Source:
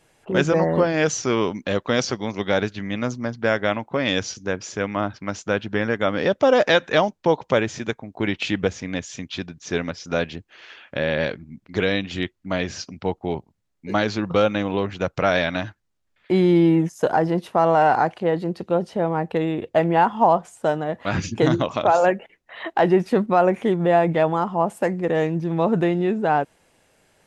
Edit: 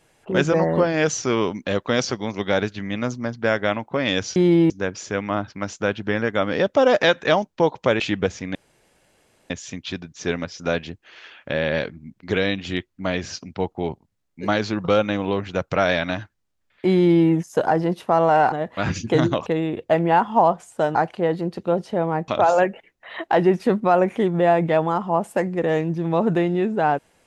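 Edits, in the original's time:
0:07.66–0:08.41: remove
0:08.96: splice in room tone 0.95 s
0:16.40–0:16.74: duplicate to 0:04.36
0:17.98–0:19.31: swap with 0:20.80–0:21.74

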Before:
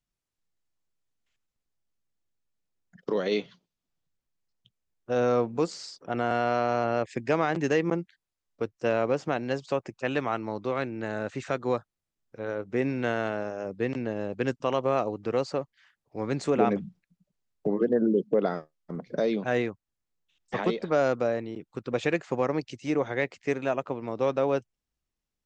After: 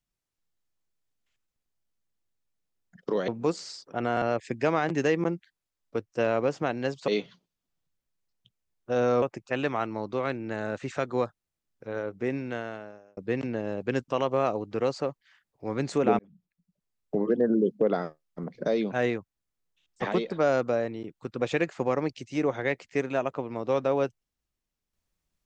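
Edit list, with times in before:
0:03.28–0:05.42: move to 0:09.74
0:06.36–0:06.88: remove
0:12.50–0:13.69: fade out linear
0:16.71–0:17.71: fade in

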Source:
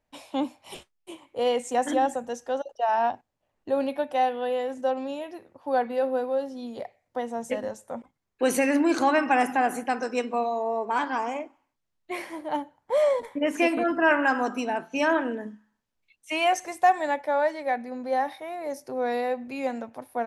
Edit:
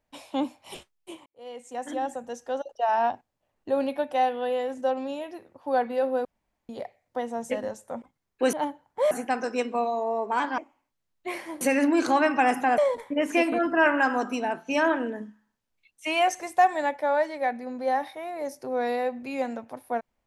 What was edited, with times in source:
0:01.26–0:02.81: fade in
0:06.25–0:06.69: fill with room tone
0:08.53–0:09.70: swap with 0:12.45–0:13.03
0:11.17–0:11.42: remove

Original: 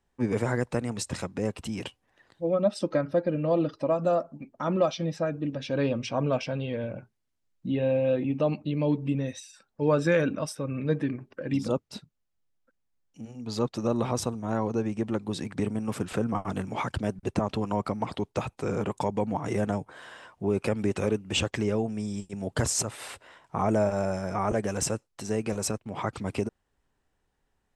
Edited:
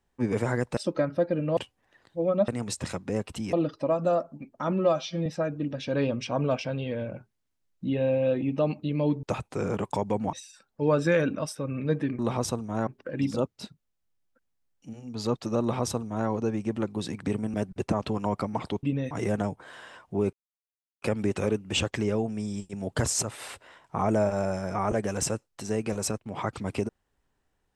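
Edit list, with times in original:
0:00.77–0:01.82: swap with 0:02.73–0:03.53
0:04.72–0:05.08: time-stretch 1.5×
0:09.05–0:09.33: swap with 0:18.30–0:19.40
0:13.93–0:14.61: duplicate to 0:11.19
0:15.86–0:17.01: remove
0:20.62: splice in silence 0.69 s

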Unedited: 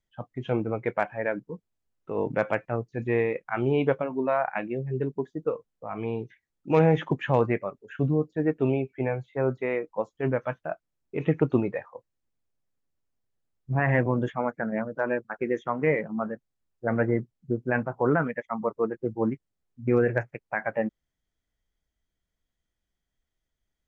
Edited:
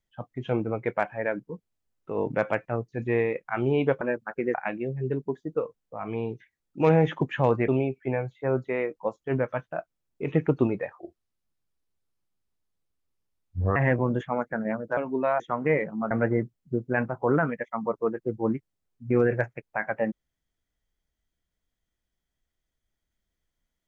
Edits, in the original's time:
0:04.01–0:04.44: swap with 0:15.04–0:15.57
0:07.58–0:08.61: remove
0:11.92–0:13.83: play speed 69%
0:16.28–0:16.88: remove

